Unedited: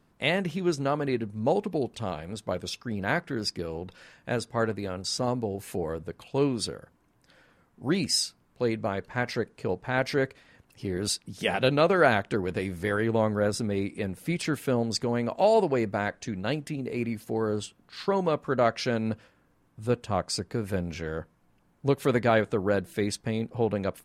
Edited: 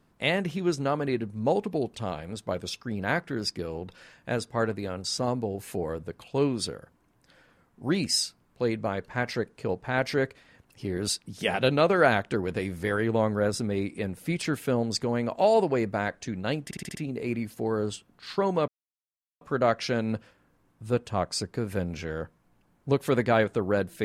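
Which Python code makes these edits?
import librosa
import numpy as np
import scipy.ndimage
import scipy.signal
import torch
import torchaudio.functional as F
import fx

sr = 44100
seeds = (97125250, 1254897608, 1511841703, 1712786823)

y = fx.edit(x, sr, fx.stutter(start_s=16.65, slice_s=0.06, count=6),
    fx.insert_silence(at_s=18.38, length_s=0.73), tone=tone)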